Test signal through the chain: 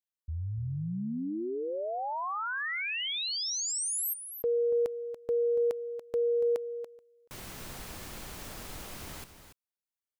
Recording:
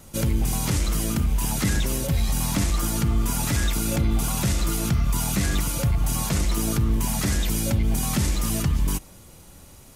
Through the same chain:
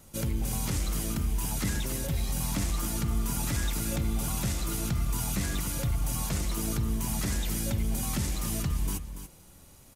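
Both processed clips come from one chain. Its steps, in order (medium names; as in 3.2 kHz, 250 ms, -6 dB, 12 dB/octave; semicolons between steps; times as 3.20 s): treble shelf 8.7 kHz +3 dB; delay 285 ms -10.5 dB; trim -7.5 dB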